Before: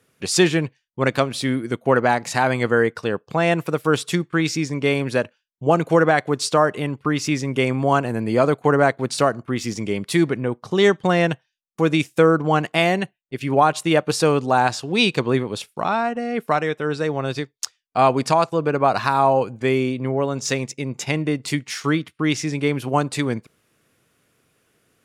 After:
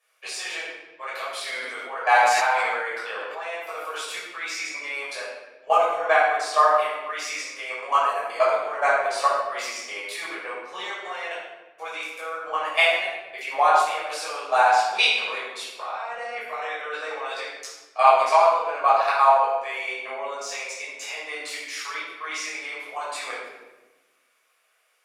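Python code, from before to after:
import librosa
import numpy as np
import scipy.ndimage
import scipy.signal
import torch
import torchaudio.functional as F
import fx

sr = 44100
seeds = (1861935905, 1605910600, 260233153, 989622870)

y = scipy.signal.sosfilt(scipy.signal.butter(4, 650.0, 'highpass', fs=sr, output='sos'), x)
y = fx.peak_eq(y, sr, hz=2300.0, db=4.5, octaves=0.22)
y = fx.level_steps(y, sr, step_db=18)
y = fx.room_shoebox(y, sr, seeds[0], volume_m3=620.0, walls='mixed', distance_m=5.8)
y = fx.sustainer(y, sr, db_per_s=25.0, at=(1.44, 3.48))
y = y * 10.0 ** (-7.0 / 20.0)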